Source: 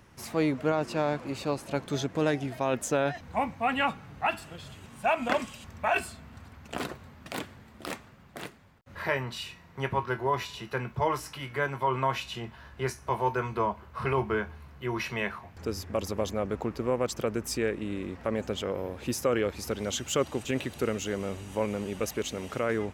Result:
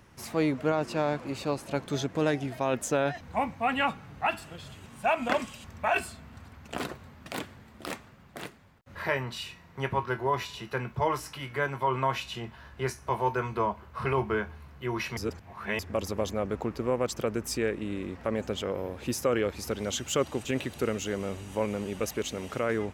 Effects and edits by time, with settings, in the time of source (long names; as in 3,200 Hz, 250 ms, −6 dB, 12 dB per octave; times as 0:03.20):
0:15.17–0:15.79: reverse